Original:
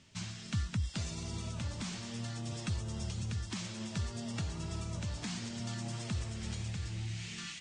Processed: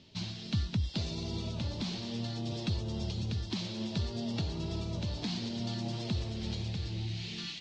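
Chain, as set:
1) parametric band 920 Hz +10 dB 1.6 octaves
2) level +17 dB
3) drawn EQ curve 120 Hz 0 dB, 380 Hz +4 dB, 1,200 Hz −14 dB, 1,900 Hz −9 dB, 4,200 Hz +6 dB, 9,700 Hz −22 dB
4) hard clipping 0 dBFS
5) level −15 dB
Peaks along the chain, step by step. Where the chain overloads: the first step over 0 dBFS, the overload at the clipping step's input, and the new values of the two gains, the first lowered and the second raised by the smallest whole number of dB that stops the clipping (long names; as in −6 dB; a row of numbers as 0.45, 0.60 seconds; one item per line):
−21.0, −4.0, −5.0, −5.0, −20.0 dBFS
no step passes full scale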